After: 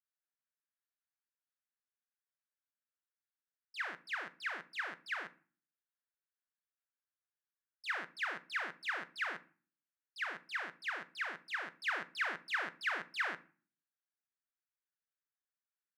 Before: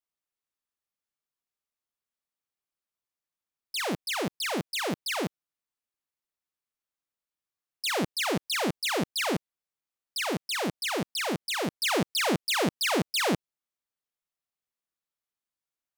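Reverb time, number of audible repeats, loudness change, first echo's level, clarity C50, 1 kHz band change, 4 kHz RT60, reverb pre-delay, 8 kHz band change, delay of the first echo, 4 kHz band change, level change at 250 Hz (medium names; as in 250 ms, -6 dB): 0.40 s, no echo, -10.5 dB, no echo, 18.5 dB, -10.0 dB, 0.30 s, 3 ms, -25.5 dB, no echo, -17.0 dB, -27.0 dB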